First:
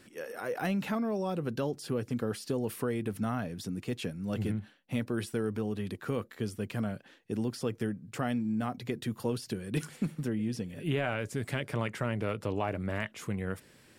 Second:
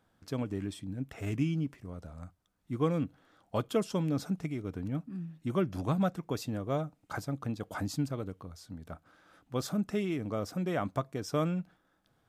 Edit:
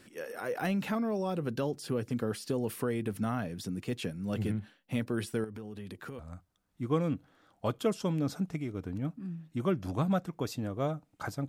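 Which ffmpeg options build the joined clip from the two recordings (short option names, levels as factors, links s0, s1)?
-filter_complex "[0:a]asettb=1/sr,asplit=3[s0][s1][s2];[s0]atrim=end=5.444[s3];[s1]atrim=start=5.44:end=6.19,asetpts=PTS-STARTPTS,afade=t=in:d=0.004:c=qsin,afade=t=out:st=0.746:d=0.004:c=qsin,acompressor=threshold=0.01:ratio=4:attack=3.2:release=140:knee=1:detection=peak[s4];[s2]atrim=start=6.186[s5];[s3][s4]acrossfade=d=0.004:c1=hsin:c2=qsin[s6];[s6][s5]acrossfade=d=0.004:c1=qsin:c2=hsin,apad=whole_dur=11.48,atrim=end=11.48,atrim=end=6.192[s7];[1:a]atrim=start=2.088:end=7.38[s8];[s7][s8]acrossfade=d=0.004:c1=hsin:c2=hsin"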